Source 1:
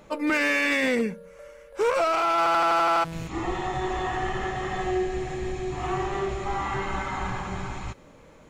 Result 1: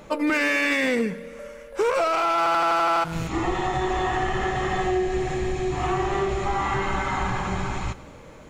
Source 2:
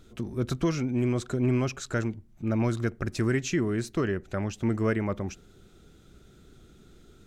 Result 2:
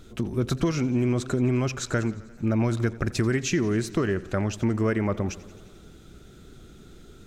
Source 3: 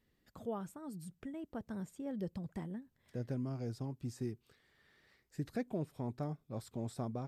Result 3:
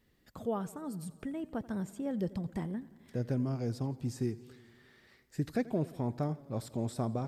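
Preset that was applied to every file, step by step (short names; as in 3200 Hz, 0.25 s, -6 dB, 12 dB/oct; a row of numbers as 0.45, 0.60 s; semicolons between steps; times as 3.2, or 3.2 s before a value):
compressor 3:1, threshold -27 dBFS; warbling echo 87 ms, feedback 72%, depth 94 cents, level -20 dB; gain +6 dB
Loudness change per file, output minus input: +2.0, +3.0, +6.0 LU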